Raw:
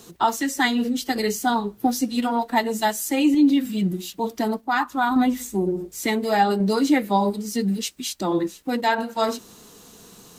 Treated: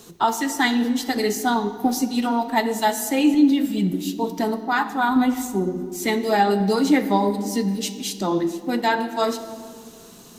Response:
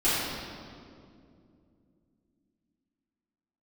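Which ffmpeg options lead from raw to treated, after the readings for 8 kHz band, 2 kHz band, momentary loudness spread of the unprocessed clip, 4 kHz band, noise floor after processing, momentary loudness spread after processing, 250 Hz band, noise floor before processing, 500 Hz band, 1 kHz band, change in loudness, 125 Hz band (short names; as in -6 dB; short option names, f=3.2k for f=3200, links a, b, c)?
+0.5 dB, +1.0 dB, 7 LU, +1.0 dB, -44 dBFS, 7 LU, +1.0 dB, -49 dBFS, +1.5 dB, +0.5 dB, +1.0 dB, +0.5 dB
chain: -filter_complex "[0:a]asplit=2[a][b];[1:a]atrim=start_sample=2205,asetrate=52920,aresample=44100[c];[b][c]afir=irnorm=-1:irlink=0,volume=-22dB[d];[a][d]amix=inputs=2:normalize=0"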